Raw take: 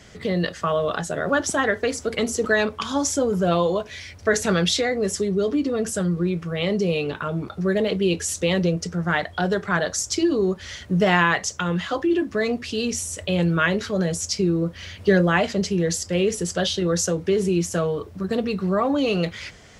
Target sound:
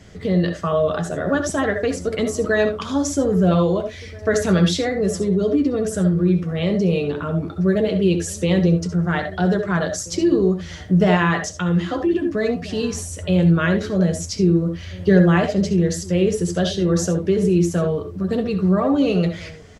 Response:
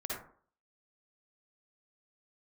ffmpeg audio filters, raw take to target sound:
-filter_complex "[0:a]lowshelf=f=450:g=9,asplit=2[s0][s1];[s1]adelay=1633,volume=0.1,highshelf=f=4000:g=-36.7[s2];[s0][s2]amix=inputs=2:normalize=0,asplit=2[s3][s4];[1:a]atrim=start_sample=2205,atrim=end_sample=3528,adelay=11[s5];[s4][s5]afir=irnorm=-1:irlink=0,volume=0.447[s6];[s3][s6]amix=inputs=2:normalize=0,volume=0.668"

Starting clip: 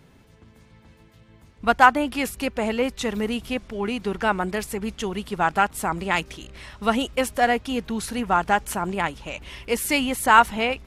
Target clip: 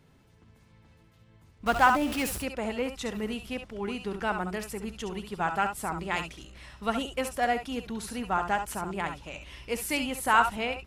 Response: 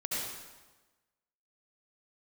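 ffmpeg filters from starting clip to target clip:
-filter_complex "[0:a]asettb=1/sr,asplit=3[s0][s1][s2];[s0]atrim=end=1.664[s3];[s1]atrim=start=1.66:end=2.38,asetpts=PTS-STARTPTS,afade=t=in:d=0.004:c=qsin,afade=t=out:st=0.716:d=0.004:c=qsin,aeval=exprs='val(0)+0.5*0.0631*sgn(val(0))':c=same[s4];[s2]atrim=start=2.376[s5];[s3][s4]acrossfade=d=0.004:c1=hsin:c2=qsin[s6];[s6][s5]acrossfade=d=0.004:c1=qsin:c2=hsin[s7];[1:a]atrim=start_sample=2205,atrim=end_sample=3087[s8];[s7][s8]afir=irnorm=-1:irlink=0,volume=0.562"

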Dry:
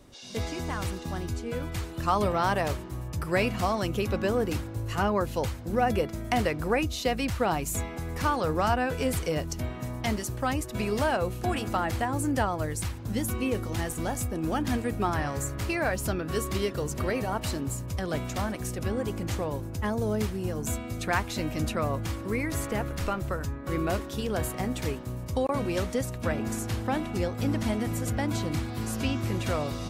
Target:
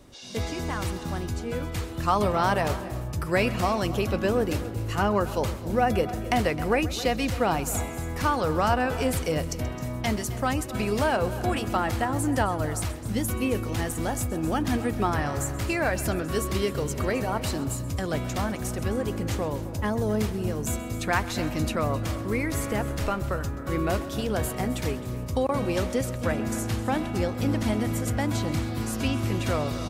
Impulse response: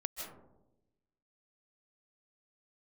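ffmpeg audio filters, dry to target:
-filter_complex "[0:a]aecho=1:1:263:0.15,asplit=2[s0][s1];[1:a]atrim=start_sample=2205,adelay=130[s2];[s1][s2]afir=irnorm=-1:irlink=0,volume=0.168[s3];[s0][s3]amix=inputs=2:normalize=0,volume=1.26"

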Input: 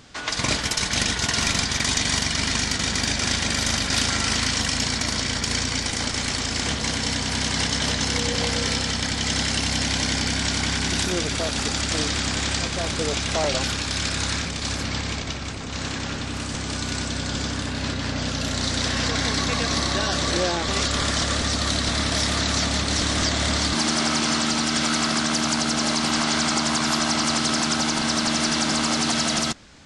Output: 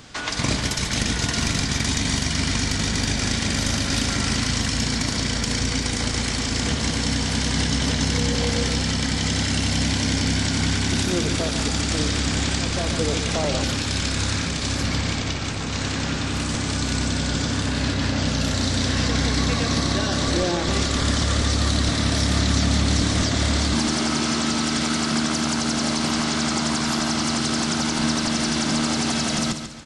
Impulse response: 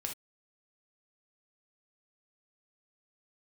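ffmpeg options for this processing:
-filter_complex "[0:a]asplit=2[s0][s1];[1:a]atrim=start_sample=2205,highshelf=f=10000:g=9[s2];[s1][s2]afir=irnorm=-1:irlink=0,volume=0.335[s3];[s0][s3]amix=inputs=2:normalize=0,acrossover=split=400[s4][s5];[s5]acompressor=threshold=0.0355:ratio=2.5[s6];[s4][s6]amix=inputs=2:normalize=0,asplit=2[s7][s8];[s8]aecho=0:1:141|282|423|564:0.355|0.131|0.0486|0.018[s9];[s7][s9]amix=inputs=2:normalize=0,volume=1.26"

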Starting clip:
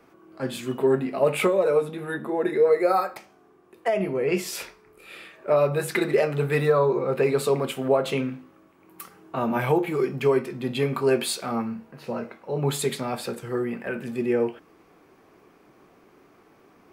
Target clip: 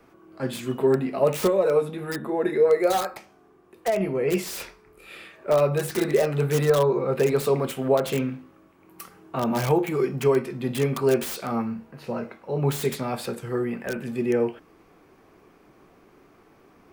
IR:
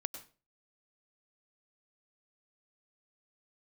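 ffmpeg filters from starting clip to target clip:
-filter_complex "[0:a]lowshelf=f=76:g=10,acrossover=split=790|930[s0][s1][s2];[s2]aeval=exprs='(mod(23.7*val(0)+1,2)-1)/23.7':c=same[s3];[s0][s1][s3]amix=inputs=3:normalize=0"

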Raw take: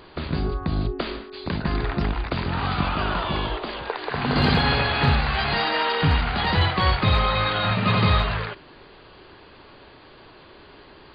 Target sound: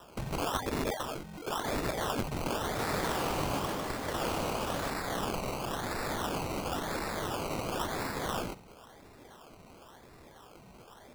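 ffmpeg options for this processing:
-filter_complex "[0:a]bandreject=f=1000:w=20,aeval=exprs='(mod(11.2*val(0)+1,2)-1)/11.2':c=same,lowpass=f=3100:t=q:w=0.5098,lowpass=f=3100:t=q:w=0.6013,lowpass=f=3100:t=q:w=0.9,lowpass=f=3100:t=q:w=2.563,afreqshift=-3600,acrusher=samples=20:mix=1:aa=0.000001:lfo=1:lforange=12:lforate=0.96,asettb=1/sr,asplit=3[s0][s1][s2];[s0]atrim=end=2.614[s3];[s1]atrim=start=2.61:end=4.9,asetpts=PTS-STARTPTS,afade=t=in:d=0.004:c=qsin,afade=t=out:st=2.286:d=0.004:c=qsin,asplit=9[s4][s5][s6][s7][s8][s9][s10][s11][s12];[s5]adelay=150,afreqshift=46,volume=0.631[s13];[s6]adelay=300,afreqshift=92,volume=0.367[s14];[s7]adelay=450,afreqshift=138,volume=0.211[s15];[s8]adelay=600,afreqshift=184,volume=0.123[s16];[s9]adelay=750,afreqshift=230,volume=0.0716[s17];[s10]adelay=900,afreqshift=276,volume=0.0412[s18];[s11]adelay=1050,afreqshift=322,volume=0.024[s19];[s12]adelay=1200,afreqshift=368,volume=0.014[s20];[s4][s13][s14][s15][s16][s17][s18][s19][s20]amix=inputs=9:normalize=0,atrim=end_sample=100989[s21];[s2]atrim=start=4.896[s22];[s3][s21]acrossfade=d=0.004:c1=hsin:c2=qsin[s23];[s23][s22]acrossfade=d=0.004:c1=qsin:c2=hsin,volume=0.531"

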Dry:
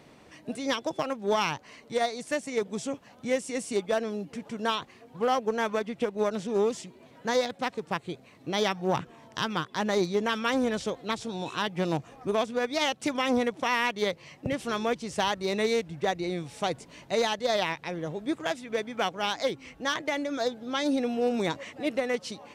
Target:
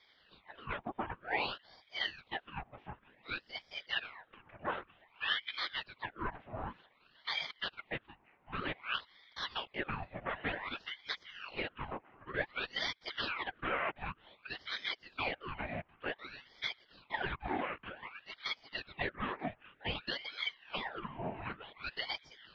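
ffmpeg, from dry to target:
-af "afftfilt=real='hypot(re,im)*cos(2*PI*random(0))':imag='hypot(re,im)*sin(2*PI*random(1))':win_size=512:overlap=0.75,highpass=f=560:t=q:w=0.5412,highpass=f=560:t=q:w=1.307,lowpass=f=2500:t=q:w=0.5176,lowpass=f=2500:t=q:w=0.7071,lowpass=f=2500:t=q:w=1.932,afreqshift=-98,aeval=exprs='val(0)*sin(2*PI*1500*n/s+1500*0.85/0.54*sin(2*PI*0.54*n/s))':c=same,volume=1.19"

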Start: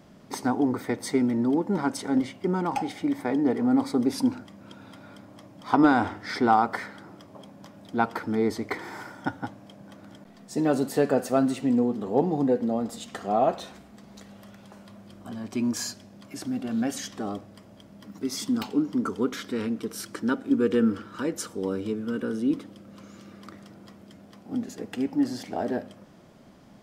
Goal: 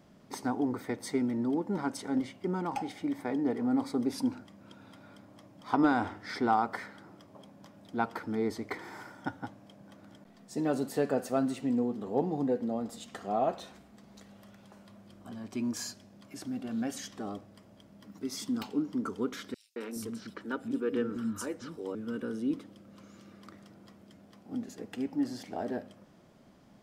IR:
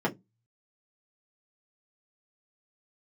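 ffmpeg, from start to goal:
-filter_complex "[0:a]asettb=1/sr,asplit=3[s0][s1][s2];[s0]atrim=end=19.544[s3];[s1]atrim=start=19.54:end=21.95,asetpts=PTS-STARTPTS,afade=t=in:d=0.004:c=qsin,afade=t=out:st=2.406:d=0.004:c=qsin,acrossover=split=250|4500[s4][s5][s6];[s5]adelay=220[s7];[s4]adelay=420[s8];[s8][s7][s6]amix=inputs=3:normalize=0,atrim=end_sample=106281[s9];[s2]atrim=start=21.946[s10];[s3][s9]acrossfade=d=0.004:c1=hsin:c2=qsin[s11];[s11][s10]acrossfade=d=0.004:c1=qsin:c2=hsin,volume=0.473"

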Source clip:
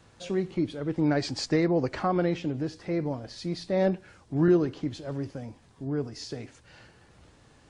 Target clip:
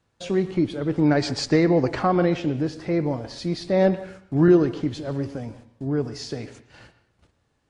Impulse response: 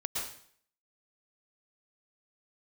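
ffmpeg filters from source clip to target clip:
-filter_complex "[0:a]agate=range=0.112:threshold=0.00251:ratio=16:detection=peak,asplit=2[s0][s1];[1:a]atrim=start_sample=2205,lowpass=4600[s2];[s1][s2]afir=irnorm=-1:irlink=0,volume=0.178[s3];[s0][s3]amix=inputs=2:normalize=0,volume=1.68"

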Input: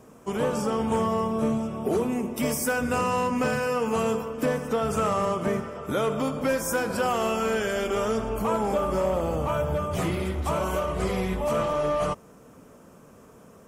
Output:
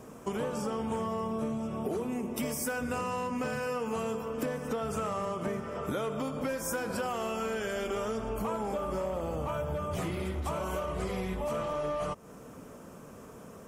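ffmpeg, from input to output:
-af "acompressor=threshold=0.02:ratio=5,volume=1.33"

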